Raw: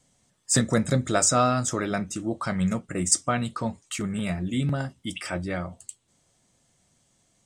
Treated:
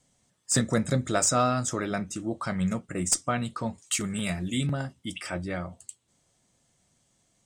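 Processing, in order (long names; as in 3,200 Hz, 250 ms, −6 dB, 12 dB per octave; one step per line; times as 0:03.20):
0:03.78–0:04.67: high-shelf EQ 2,700 Hz +10.5 dB
asymmetric clip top −14.5 dBFS
level −2.5 dB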